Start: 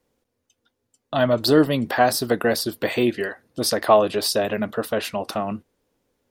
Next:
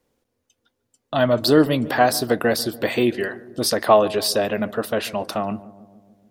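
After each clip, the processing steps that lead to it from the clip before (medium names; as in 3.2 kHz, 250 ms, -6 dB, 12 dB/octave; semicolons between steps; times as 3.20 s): filtered feedback delay 145 ms, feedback 68%, low-pass 960 Hz, level -17 dB; trim +1 dB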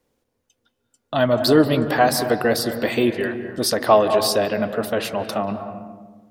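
on a send at -7 dB: distance through air 320 m + reverberation RT60 1.2 s, pre-delay 176 ms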